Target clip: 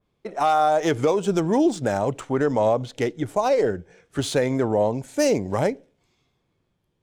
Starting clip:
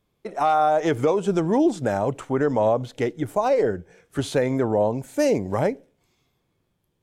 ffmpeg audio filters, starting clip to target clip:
-af "highshelf=f=6100:g=7.5,adynamicsmooth=sensitivity=6:basefreq=5500,adynamicequalizer=threshold=0.0112:dfrequency=2800:dqfactor=0.7:tfrequency=2800:tqfactor=0.7:attack=5:release=100:ratio=0.375:range=2:mode=boostabove:tftype=highshelf"

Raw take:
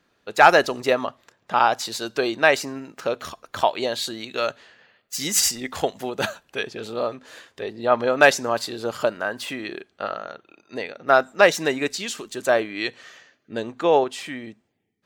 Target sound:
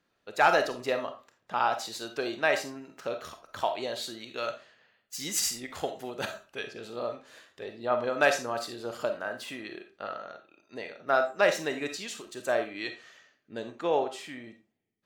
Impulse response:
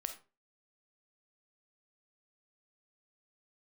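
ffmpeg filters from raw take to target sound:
-filter_complex "[1:a]atrim=start_sample=2205[s0];[0:a][s0]afir=irnorm=-1:irlink=0,volume=0.422"

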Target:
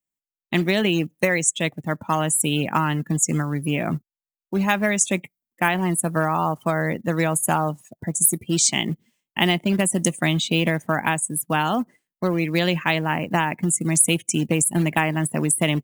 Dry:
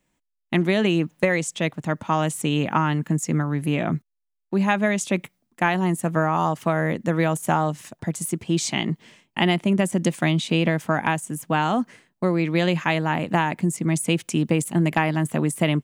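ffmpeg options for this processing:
-af "acrusher=bits=4:mode=log:mix=0:aa=0.000001,afftdn=nr=25:nf=-36,aemphasis=mode=production:type=75fm"

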